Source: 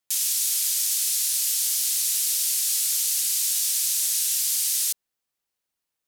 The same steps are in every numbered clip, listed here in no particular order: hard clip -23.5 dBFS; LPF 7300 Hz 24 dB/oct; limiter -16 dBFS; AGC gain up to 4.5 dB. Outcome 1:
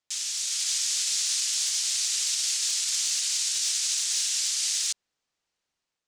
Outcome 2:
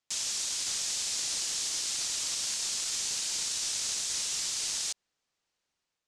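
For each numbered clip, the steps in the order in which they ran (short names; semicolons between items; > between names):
limiter > LPF > hard clip > AGC; AGC > limiter > hard clip > LPF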